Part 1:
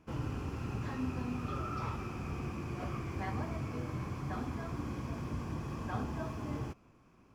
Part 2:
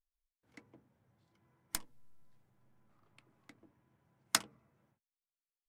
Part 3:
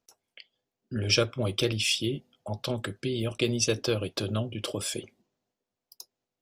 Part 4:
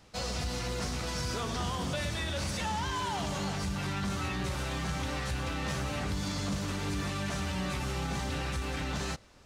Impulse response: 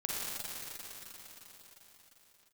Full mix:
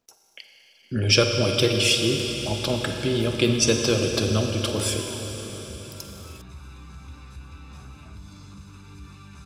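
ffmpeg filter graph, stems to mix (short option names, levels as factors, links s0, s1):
-filter_complex "[0:a]adelay=1850,volume=0.126[s0];[1:a]adelay=450,volume=0.141,asplit=2[s1][s2];[s2]volume=0.473[s3];[2:a]volume=1.26,asplit=2[s4][s5];[s5]volume=0.596[s6];[3:a]equalizer=f=74:w=2.8:g=9.5,aecho=1:1:0.8:0.78,adelay=2050,volume=0.158[s7];[4:a]atrim=start_sample=2205[s8];[s3][s6]amix=inputs=2:normalize=0[s9];[s9][s8]afir=irnorm=-1:irlink=0[s10];[s0][s1][s4][s7][s10]amix=inputs=5:normalize=0"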